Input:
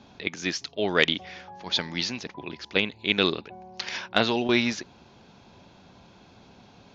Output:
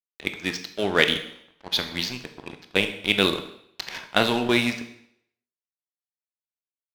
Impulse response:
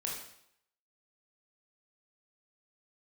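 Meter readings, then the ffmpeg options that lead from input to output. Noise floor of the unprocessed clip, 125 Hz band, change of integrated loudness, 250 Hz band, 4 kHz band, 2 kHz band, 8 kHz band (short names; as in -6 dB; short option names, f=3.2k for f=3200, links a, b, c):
-54 dBFS, +2.0 dB, +2.5 dB, +1.0 dB, +2.0 dB, +2.0 dB, n/a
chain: -filter_complex "[0:a]aeval=exprs='sgn(val(0))*max(abs(val(0))-0.0133,0)':c=same,adynamicsmooth=sensitivity=8:basefreq=2.5k,asplit=2[a][b];[1:a]atrim=start_sample=2205[c];[b][c]afir=irnorm=-1:irlink=0,volume=-4dB[d];[a][d]amix=inputs=2:normalize=0,volume=-1dB"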